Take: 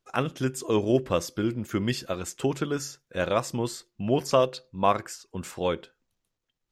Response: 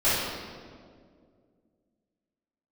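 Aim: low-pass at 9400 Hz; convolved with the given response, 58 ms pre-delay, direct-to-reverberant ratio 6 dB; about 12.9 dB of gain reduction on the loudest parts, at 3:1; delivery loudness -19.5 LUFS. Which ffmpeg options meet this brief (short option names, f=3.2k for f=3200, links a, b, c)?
-filter_complex "[0:a]lowpass=9.4k,acompressor=threshold=-34dB:ratio=3,asplit=2[a][b];[1:a]atrim=start_sample=2205,adelay=58[c];[b][c]afir=irnorm=-1:irlink=0,volume=-22dB[d];[a][d]amix=inputs=2:normalize=0,volume=16.5dB"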